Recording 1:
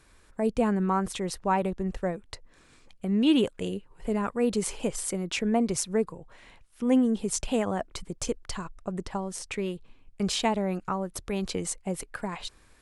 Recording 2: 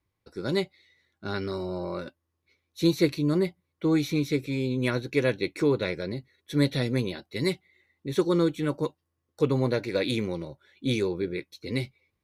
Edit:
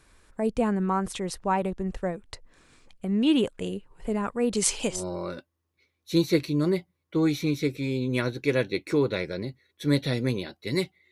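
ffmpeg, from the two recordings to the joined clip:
-filter_complex "[0:a]asettb=1/sr,asplit=3[s0][s1][s2];[s0]atrim=end=4.554[s3];[s1]atrim=start=4.55:end=5.04,asetpts=PTS-STARTPTS,afade=t=in:d=0.004:c=qsin,afade=t=out:st=0.486:d=0.004:c=qsin,equalizer=f=5200:t=o:w=2.5:g=12[s4];[s2]atrim=start=5.036[s5];[s3][s4]acrossfade=d=0.004:c1=hsin:c2=qsin[s6];[s6][s5]acrossfade=d=0.004:c1=qsin:c2=hsin,apad=whole_dur=11.11,atrim=end=11.11,atrim=end=5.04,asetpts=PTS-STARTPTS[s7];[1:a]atrim=start=1.57:end=7.8,asetpts=PTS-STARTPTS[s8];[s7][s8]acrossfade=d=0.16:c1=tri:c2=tri"

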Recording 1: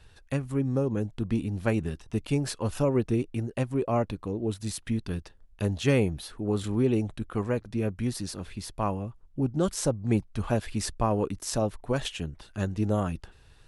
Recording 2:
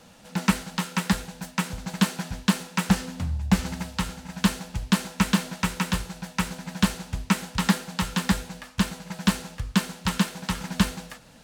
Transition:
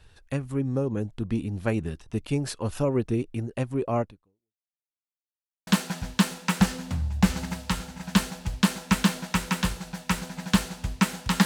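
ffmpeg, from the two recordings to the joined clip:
-filter_complex "[0:a]apad=whole_dur=11.45,atrim=end=11.45,asplit=2[s0][s1];[s0]atrim=end=4.75,asetpts=PTS-STARTPTS,afade=t=out:st=4.01:d=0.74:c=exp[s2];[s1]atrim=start=4.75:end=5.67,asetpts=PTS-STARTPTS,volume=0[s3];[1:a]atrim=start=1.96:end=7.74,asetpts=PTS-STARTPTS,afade=t=in:d=0.004:c=hsin[s4];[s2][s3][s4]concat=n=3:v=0:a=1"

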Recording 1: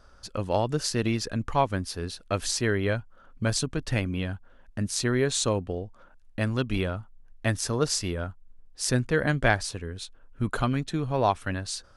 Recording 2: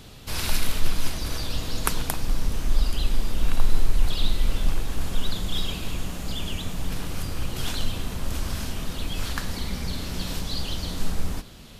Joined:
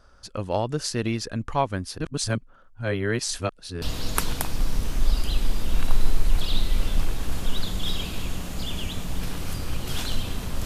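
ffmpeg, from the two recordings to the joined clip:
-filter_complex "[0:a]apad=whole_dur=10.65,atrim=end=10.65,asplit=2[s0][s1];[s0]atrim=end=1.982[s2];[s1]atrim=start=1.978:end=3.822,asetpts=PTS-STARTPTS,areverse[s3];[1:a]atrim=start=1.508:end=8.34[s4];[s2][s3]acrossfade=d=0.004:c1=hsin:c2=hsin[s5];[s5][s4]acrossfade=d=0.004:c1=hsin:c2=hsin"

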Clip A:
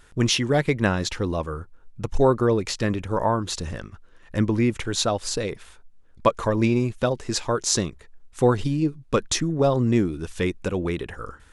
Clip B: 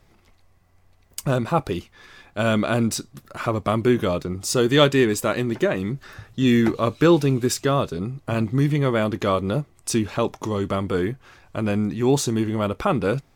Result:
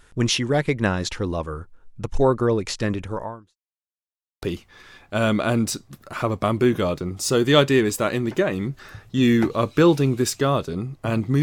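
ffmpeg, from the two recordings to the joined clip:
-filter_complex "[0:a]apad=whole_dur=11.42,atrim=end=11.42,asplit=2[s0][s1];[s0]atrim=end=3.57,asetpts=PTS-STARTPTS,afade=t=out:st=3.04:d=0.53:c=qua[s2];[s1]atrim=start=3.57:end=4.42,asetpts=PTS-STARTPTS,volume=0[s3];[1:a]atrim=start=1.66:end=8.66,asetpts=PTS-STARTPTS,afade=t=in:d=0.004:c=hsin[s4];[s2][s3][s4]concat=n=3:v=0:a=1"

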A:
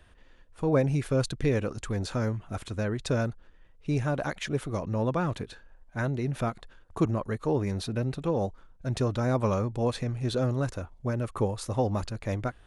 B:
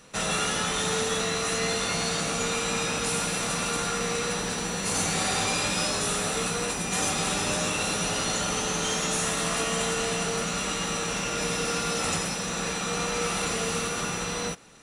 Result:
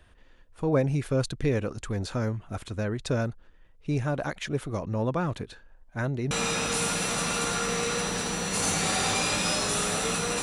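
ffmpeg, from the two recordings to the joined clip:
-filter_complex "[0:a]apad=whole_dur=10.42,atrim=end=10.42,atrim=end=6.312[s0];[1:a]atrim=start=2.628:end=6.74[s1];[s0][s1]acrossfade=d=0.004:c1=hsin:c2=hsin"

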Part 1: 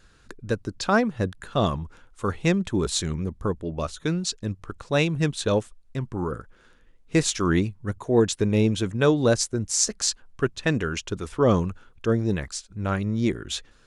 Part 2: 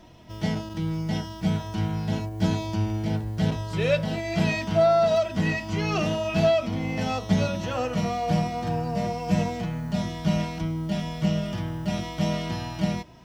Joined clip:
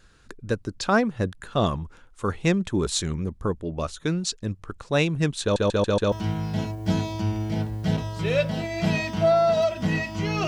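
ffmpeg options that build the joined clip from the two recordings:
-filter_complex "[0:a]apad=whole_dur=10.47,atrim=end=10.47,asplit=5[s0][s1][s2][s3][s4];[s0]atrim=end=5.562[s5];[s1]atrim=start=5.418:end=5.562[s6];[s2]atrim=start=5.418:end=5.562[s7];[s3]atrim=start=5.418:end=5.562[s8];[s4]atrim=start=5.418:end=5.562[s9];[1:a]atrim=start=1.658:end=6.01[s10];[s5][s6]acrossfade=d=0.004:c1=hsin:c2=hsin[s11];[s11][s7]acrossfade=d=0.004:c1=hsin:c2=hsin[s12];[s12][s8]acrossfade=d=0.004:c1=hsin:c2=hsin[s13];[s13][s9]acrossfade=d=0.004:c1=hsin:c2=hsin[s14];[s14][s10]acrossfade=d=0.004:c1=hsin:c2=hsin"

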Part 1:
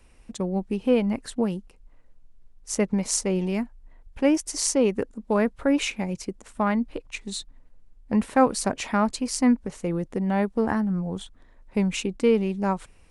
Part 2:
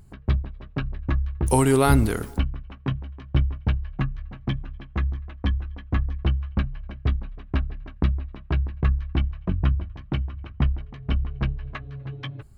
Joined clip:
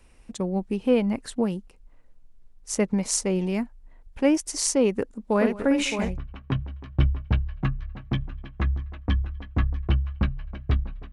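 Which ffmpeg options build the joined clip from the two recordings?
-filter_complex "[0:a]asplit=3[s0][s1][s2];[s0]afade=t=out:st=5.4:d=0.02[s3];[s1]aecho=1:1:55|200|616:0.447|0.106|0.398,afade=t=in:st=5.4:d=0.02,afade=t=out:st=6.18:d=0.02[s4];[s2]afade=t=in:st=6.18:d=0.02[s5];[s3][s4][s5]amix=inputs=3:normalize=0,apad=whole_dur=11.12,atrim=end=11.12,atrim=end=6.18,asetpts=PTS-STARTPTS[s6];[1:a]atrim=start=2.38:end=7.48,asetpts=PTS-STARTPTS[s7];[s6][s7]acrossfade=d=0.16:c1=tri:c2=tri"

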